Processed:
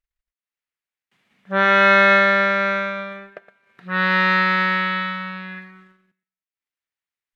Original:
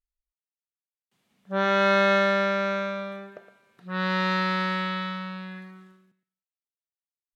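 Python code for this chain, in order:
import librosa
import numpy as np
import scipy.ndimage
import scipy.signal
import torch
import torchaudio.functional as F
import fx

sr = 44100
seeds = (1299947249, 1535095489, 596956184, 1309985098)

y = fx.high_shelf(x, sr, hz=6000.0, db=-6.5)
y = fx.transient(y, sr, attack_db=2, sustain_db=-10)
y = fx.peak_eq(y, sr, hz=2000.0, db=10.5, octaves=1.4)
y = y * librosa.db_to_amplitude(2.5)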